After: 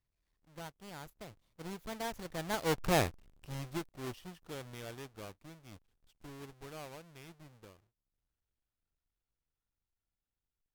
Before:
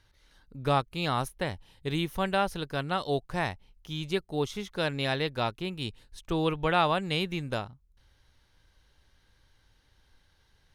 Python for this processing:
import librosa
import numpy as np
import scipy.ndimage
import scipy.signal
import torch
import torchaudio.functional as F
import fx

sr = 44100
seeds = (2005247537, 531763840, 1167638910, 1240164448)

y = fx.halfwave_hold(x, sr)
y = fx.doppler_pass(y, sr, speed_mps=49, closest_m=10.0, pass_at_s=2.93)
y = y * 10.0 ** (-3.0 / 20.0)